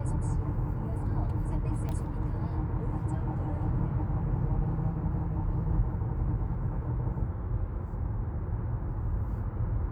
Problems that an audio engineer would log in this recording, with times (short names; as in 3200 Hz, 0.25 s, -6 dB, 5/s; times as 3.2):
1.89 pop -24 dBFS